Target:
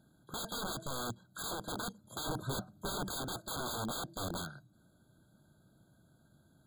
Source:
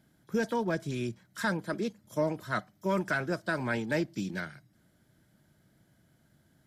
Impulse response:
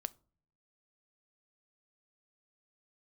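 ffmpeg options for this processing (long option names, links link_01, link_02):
-filter_complex "[0:a]aeval=exprs='(mod(39.8*val(0)+1,2)-1)/39.8':channel_layout=same,asettb=1/sr,asplit=3[link_01][link_02][link_03];[link_01]atrim=end=2.264[link_04];[link_02]atrim=start=2.26:end=3.09,asetpts=PTS-STARTPTS,afade=type=in:duration=0.004:curve=qsin,afade=type=out:start_time=0.826:duration=0.004:curve=qsin,lowshelf=frequency=430:gain=7.5[link_05];[link_03]atrim=start=3.086[link_06];[link_04][link_05]acrossfade=duration=0.004:curve1=hsin:curve2=qsin[link_07];[link_07][link_06]acrossfade=duration=0.004:curve1=qsin:curve2=hsin,afftfilt=real='re*eq(mod(floor(b*sr/1024/1600),2),0)':imag='im*eq(mod(floor(b*sr/1024/1600),2),0)':win_size=1024:overlap=0.75"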